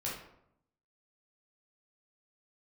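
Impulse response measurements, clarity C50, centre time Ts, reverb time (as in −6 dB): 3.0 dB, 45 ms, 0.75 s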